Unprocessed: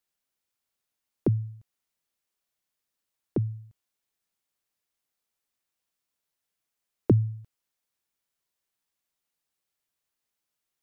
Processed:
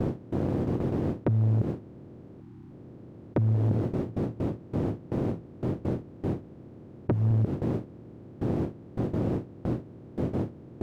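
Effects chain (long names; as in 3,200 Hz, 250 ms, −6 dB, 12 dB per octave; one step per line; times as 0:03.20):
compressor on every frequency bin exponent 0.2
notch filter 430 Hz, Q 12
0:02.41–0:02.71: time-frequency box erased 370–740 Hz
noise gate with hold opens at −22 dBFS
0:03.54–0:07.31: hum removal 56.33 Hz, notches 3
downward compressor 12 to 1, threshold −25 dBFS, peak gain reduction 11.5 dB
soft clipping −22.5 dBFS, distortion −17 dB
highs frequency-modulated by the lows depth 0.87 ms
level +6.5 dB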